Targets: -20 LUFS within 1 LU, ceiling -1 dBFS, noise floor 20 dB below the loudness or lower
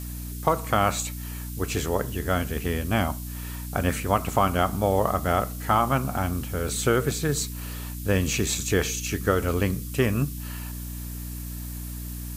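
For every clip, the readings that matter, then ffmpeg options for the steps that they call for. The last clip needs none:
hum 60 Hz; highest harmonic 300 Hz; hum level -32 dBFS; noise floor -35 dBFS; noise floor target -47 dBFS; loudness -26.5 LUFS; peak level -7.0 dBFS; loudness target -20.0 LUFS
-> -af "bandreject=f=60:t=h:w=4,bandreject=f=120:t=h:w=4,bandreject=f=180:t=h:w=4,bandreject=f=240:t=h:w=4,bandreject=f=300:t=h:w=4"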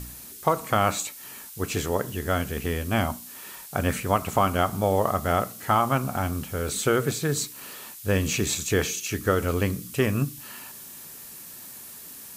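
hum not found; noise floor -43 dBFS; noise floor target -46 dBFS
-> -af "afftdn=nr=6:nf=-43"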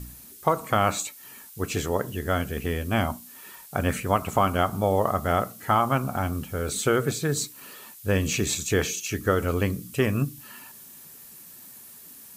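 noise floor -47 dBFS; loudness -26.0 LUFS; peak level -7.5 dBFS; loudness target -20.0 LUFS
-> -af "volume=2"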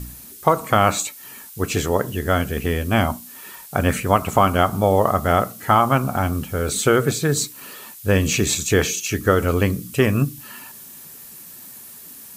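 loudness -20.0 LUFS; peak level -1.5 dBFS; noise floor -41 dBFS

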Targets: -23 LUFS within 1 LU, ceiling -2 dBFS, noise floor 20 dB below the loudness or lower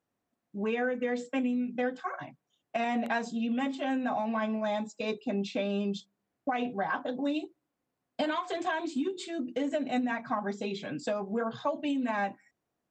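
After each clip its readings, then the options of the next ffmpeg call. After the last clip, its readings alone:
loudness -32.5 LUFS; peak level -17.0 dBFS; loudness target -23.0 LUFS
-> -af "volume=2.99"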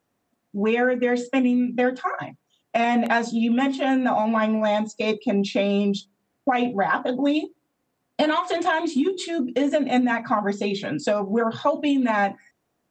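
loudness -23.0 LUFS; peak level -7.5 dBFS; noise floor -75 dBFS

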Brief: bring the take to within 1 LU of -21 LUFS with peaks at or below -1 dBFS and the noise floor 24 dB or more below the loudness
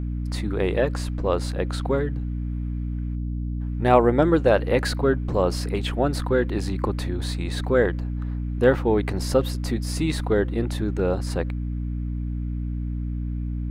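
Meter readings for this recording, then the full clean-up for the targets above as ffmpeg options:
hum 60 Hz; highest harmonic 300 Hz; hum level -25 dBFS; loudness -24.5 LUFS; peak level -2.5 dBFS; loudness target -21.0 LUFS
-> -af "bandreject=f=60:t=h:w=4,bandreject=f=120:t=h:w=4,bandreject=f=180:t=h:w=4,bandreject=f=240:t=h:w=4,bandreject=f=300:t=h:w=4"
-af "volume=1.5,alimiter=limit=0.891:level=0:latency=1"

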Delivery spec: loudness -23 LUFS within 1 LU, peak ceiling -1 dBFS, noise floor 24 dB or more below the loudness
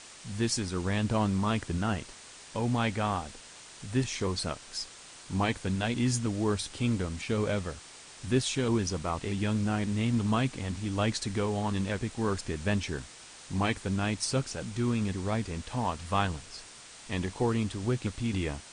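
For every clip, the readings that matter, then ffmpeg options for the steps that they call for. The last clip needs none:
noise floor -50 dBFS; noise floor target -55 dBFS; loudness -31.0 LUFS; peak level -14.0 dBFS; loudness target -23.0 LUFS
-> -af "afftdn=nr=6:nf=-50"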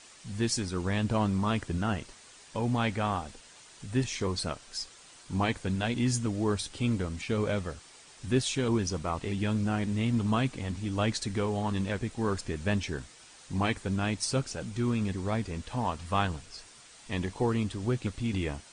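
noise floor -54 dBFS; noise floor target -55 dBFS
-> -af "afftdn=nr=6:nf=-54"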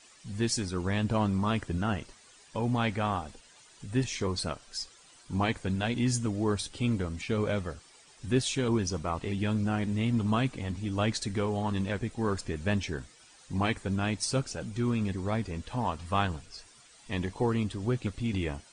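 noise floor -57 dBFS; loudness -31.0 LUFS; peak level -14.0 dBFS; loudness target -23.0 LUFS
-> -af "volume=2.51"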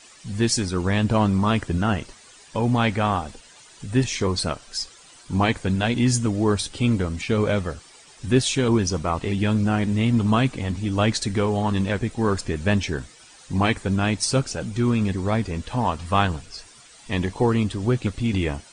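loudness -23.0 LUFS; peak level -6.0 dBFS; noise floor -49 dBFS

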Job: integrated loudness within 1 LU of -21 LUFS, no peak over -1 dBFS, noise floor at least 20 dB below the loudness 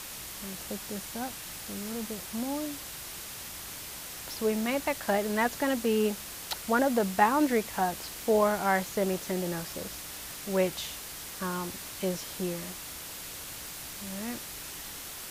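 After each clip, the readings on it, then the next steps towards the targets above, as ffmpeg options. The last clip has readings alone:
noise floor -42 dBFS; noise floor target -52 dBFS; loudness -31.5 LUFS; peak level -9.5 dBFS; loudness target -21.0 LUFS
-> -af "afftdn=nr=10:nf=-42"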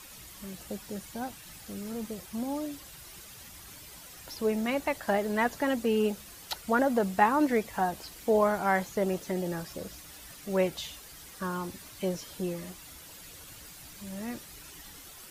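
noise floor -49 dBFS; noise floor target -51 dBFS
-> -af "afftdn=nr=6:nf=-49"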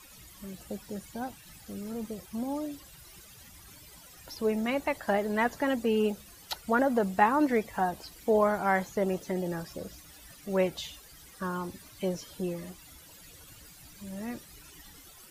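noise floor -53 dBFS; loudness -30.5 LUFS; peak level -9.5 dBFS; loudness target -21.0 LUFS
-> -af "volume=2.99,alimiter=limit=0.891:level=0:latency=1"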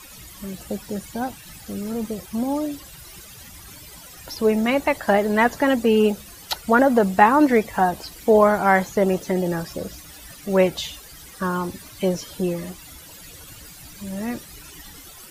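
loudness -21.5 LUFS; peak level -1.0 dBFS; noise floor -43 dBFS

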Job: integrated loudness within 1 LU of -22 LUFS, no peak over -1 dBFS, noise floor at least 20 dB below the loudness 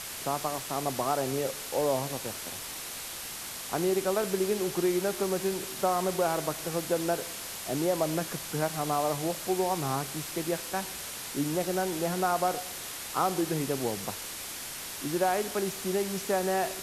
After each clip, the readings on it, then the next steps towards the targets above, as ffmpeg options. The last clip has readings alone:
noise floor -39 dBFS; noise floor target -51 dBFS; loudness -30.5 LUFS; peak level -13.0 dBFS; loudness target -22.0 LUFS
-> -af "afftdn=nr=12:nf=-39"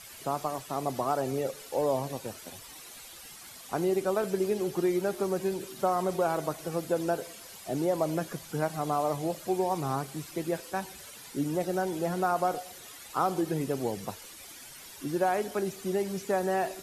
noise floor -48 dBFS; noise floor target -51 dBFS
-> -af "afftdn=nr=6:nf=-48"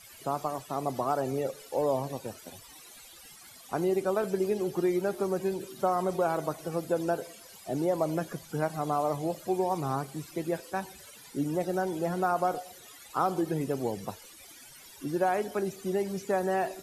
noise floor -51 dBFS; loudness -31.0 LUFS; peak level -13.5 dBFS; loudness target -22.0 LUFS
-> -af "volume=2.82"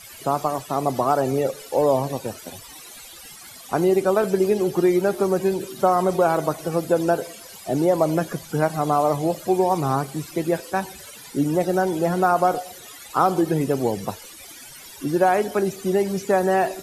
loudness -22.0 LUFS; peak level -4.5 dBFS; noise floor -42 dBFS

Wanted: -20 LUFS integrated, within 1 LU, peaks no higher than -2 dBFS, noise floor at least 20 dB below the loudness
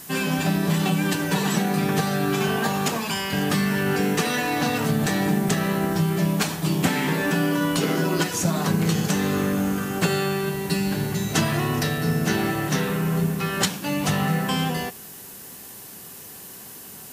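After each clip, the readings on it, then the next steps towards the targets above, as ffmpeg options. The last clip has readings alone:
noise floor -41 dBFS; noise floor target -43 dBFS; loudness -23.0 LUFS; peak level -8.0 dBFS; loudness target -20.0 LUFS
-> -af "afftdn=nr=6:nf=-41"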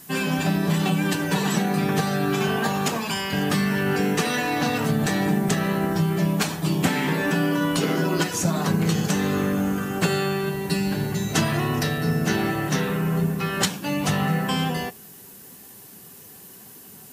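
noise floor -45 dBFS; loudness -23.5 LUFS; peak level -8.5 dBFS; loudness target -20.0 LUFS
-> -af "volume=1.5"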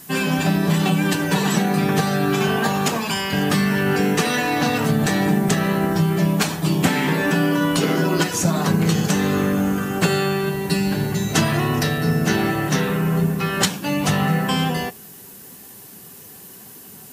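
loudness -20.0 LUFS; peak level -5.0 dBFS; noise floor -41 dBFS

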